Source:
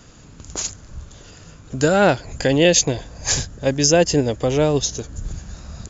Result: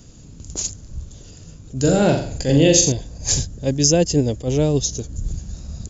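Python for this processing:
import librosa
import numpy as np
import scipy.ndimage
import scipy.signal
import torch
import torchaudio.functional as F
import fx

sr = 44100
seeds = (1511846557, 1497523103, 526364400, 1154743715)

y = fx.peak_eq(x, sr, hz=1400.0, db=-15.0, octaves=2.6)
y = fx.room_flutter(y, sr, wall_m=7.4, rt60_s=0.52, at=(1.78, 2.92))
y = fx.attack_slew(y, sr, db_per_s=250.0)
y = y * librosa.db_to_amplitude(4.0)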